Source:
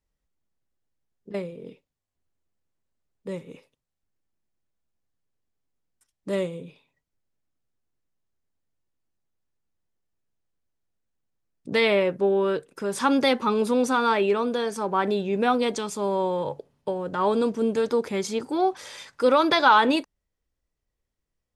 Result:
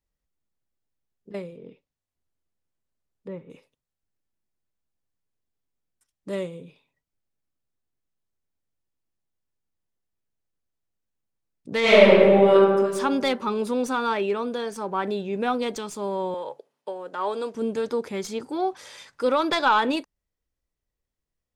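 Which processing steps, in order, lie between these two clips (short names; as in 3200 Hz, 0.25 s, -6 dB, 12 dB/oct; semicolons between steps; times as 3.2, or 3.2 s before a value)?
tracing distortion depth 0.02 ms; 1.55–3.5 treble ducked by the level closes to 1800 Hz, closed at -34.5 dBFS; 11.81–12.53 reverb throw, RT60 1.6 s, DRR -11 dB; 16.34–17.55 HPF 430 Hz 12 dB/oct; gain -3 dB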